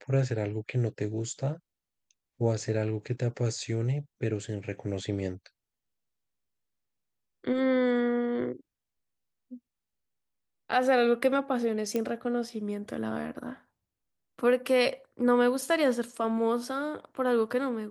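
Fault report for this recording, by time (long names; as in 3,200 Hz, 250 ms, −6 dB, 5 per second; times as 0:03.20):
0:11.96: click −17 dBFS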